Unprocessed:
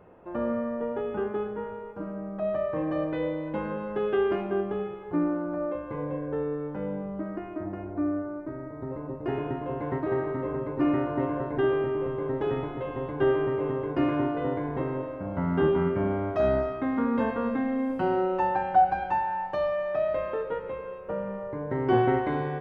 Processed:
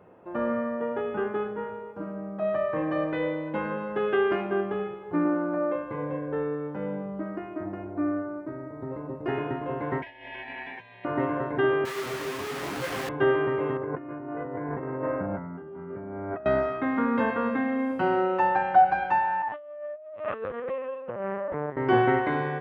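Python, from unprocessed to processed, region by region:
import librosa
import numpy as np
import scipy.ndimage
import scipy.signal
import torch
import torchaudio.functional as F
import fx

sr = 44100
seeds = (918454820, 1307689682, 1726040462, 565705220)

y = fx.chain(x, sr, fx.highpass(hz=360.0, slope=6),
    fx.low_shelf(hz=460.0, db=9.0), at=(5.25, 5.84))
y = fx.chain(y, sr, fx.highpass(hz=750.0, slope=12),
    fx.over_compress(threshold_db=-40.0, ratio=-0.5),
    fx.ring_mod(carrier_hz=1300.0), at=(10.02, 11.05))
y = fx.chain(y, sr, fx.schmitt(flips_db=-43.0),
    fx.detune_double(cents=30), at=(11.85, 13.09))
y = fx.chain(y, sr, fx.lowpass(hz=2000.0, slope=24),
    fx.notch(hz=1100.0, q=19.0),
    fx.over_compress(threshold_db=-35.0, ratio=-1.0), at=(13.77, 16.46))
y = fx.chain(y, sr, fx.over_compress(threshold_db=-33.0, ratio=-0.5),
    fx.lpc_vocoder(seeds[0], excitation='pitch_kept', order=10), at=(19.42, 21.77))
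y = scipy.signal.sosfilt(scipy.signal.butter(2, 94.0, 'highpass', fs=sr, output='sos'), y)
y = fx.dynamic_eq(y, sr, hz=1800.0, q=0.8, threshold_db=-44.0, ratio=4.0, max_db=7)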